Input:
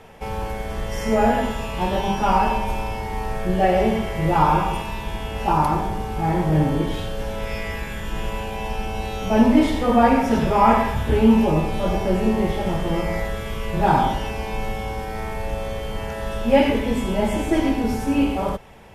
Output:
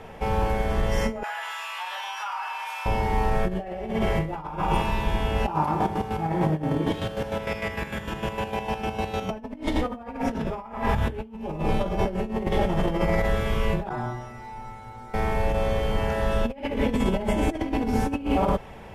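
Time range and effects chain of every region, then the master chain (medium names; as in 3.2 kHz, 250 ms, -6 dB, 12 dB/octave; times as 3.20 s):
1.23–2.86 s: high-pass 1.1 kHz 24 dB/octave + compression, threshold -31 dBFS
5.50–9.31 s: square tremolo 6.6 Hz, depth 60%, duty 40% + high-pass 91 Hz
13.89–15.14 s: treble shelf 11 kHz -6 dB + inharmonic resonator 120 Hz, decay 0.53 s, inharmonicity 0.002
whole clip: treble shelf 3.9 kHz -8 dB; compressor with a negative ratio -24 dBFS, ratio -0.5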